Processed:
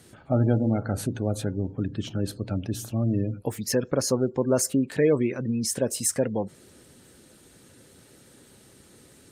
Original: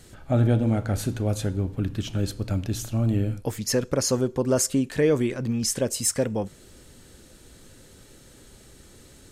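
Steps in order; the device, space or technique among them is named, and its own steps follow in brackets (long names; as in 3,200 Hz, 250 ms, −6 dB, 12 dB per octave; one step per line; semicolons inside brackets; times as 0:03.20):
noise-suppressed video call (high-pass filter 110 Hz 12 dB per octave; gate on every frequency bin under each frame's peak −30 dB strong; Opus 32 kbit/s 48,000 Hz)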